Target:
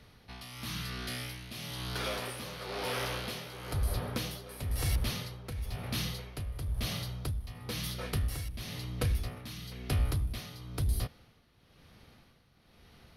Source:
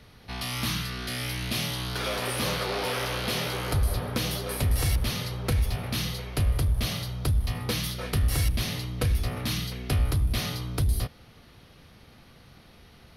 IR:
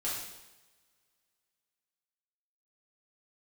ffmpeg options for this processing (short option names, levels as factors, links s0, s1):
-af "tremolo=f=1:d=0.69,volume=0.596"